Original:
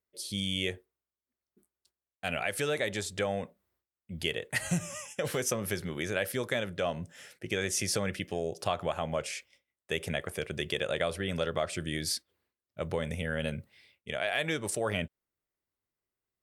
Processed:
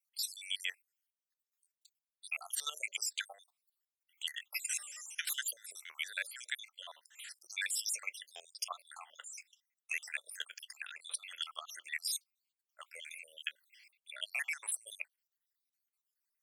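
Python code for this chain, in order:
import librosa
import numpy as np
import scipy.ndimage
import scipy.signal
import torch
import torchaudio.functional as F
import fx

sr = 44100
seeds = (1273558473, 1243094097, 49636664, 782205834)

y = fx.spec_dropout(x, sr, seeds[0], share_pct=67)
y = scipy.signal.sosfilt(scipy.signal.bessel(4, 1600.0, 'highpass', norm='mag', fs=sr, output='sos'), y)
y = fx.high_shelf(y, sr, hz=2700.0, db=8.5)
y = fx.level_steps(y, sr, step_db=13)
y = F.gain(torch.from_numpy(y), 3.5).numpy()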